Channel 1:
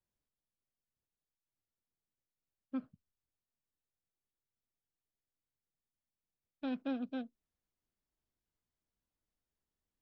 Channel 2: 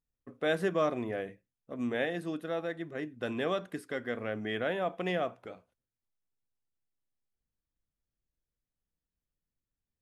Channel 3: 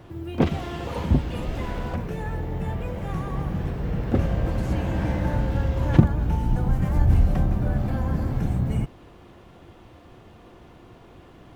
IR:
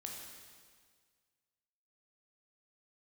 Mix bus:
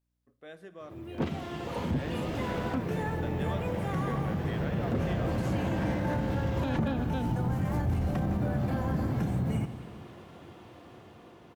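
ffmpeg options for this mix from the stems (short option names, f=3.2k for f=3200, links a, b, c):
-filter_complex "[0:a]highpass=290,aeval=exprs='val(0)+0.0001*(sin(2*PI*60*n/s)+sin(2*PI*2*60*n/s)/2+sin(2*PI*3*60*n/s)/3+sin(2*PI*4*60*n/s)/4+sin(2*PI*5*60*n/s)/5)':c=same,volume=0.5dB[a];[1:a]volume=-20dB,asplit=2[b][c];[c]volume=-8.5dB[d];[2:a]highpass=110,asoftclip=type=tanh:threshold=-14dB,adelay=800,volume=-12.5dB,asplit=2[e][f];[f]volume=-5.5dB[g];[3:a]atrim=start_sample=2205[h];[d][g]amix=inputs=2:normalize=0[i];[i][h]afir=irnorm=-1:irlink=0[j];[a][b][e][j]amix=inputs=4:normalize=0,dynaudnorm=f=730:g=5:m=11dB,alimiter=limit=-21.5dB:level=0:latency=1:release=77"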